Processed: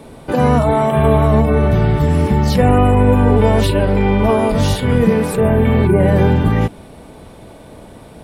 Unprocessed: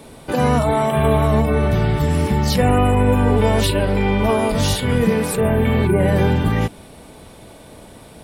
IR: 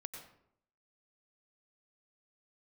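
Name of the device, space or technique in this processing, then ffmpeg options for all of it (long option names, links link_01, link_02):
behind a face mask: -af "highshelf=frequency=2200:gain=-8,volume=4dB"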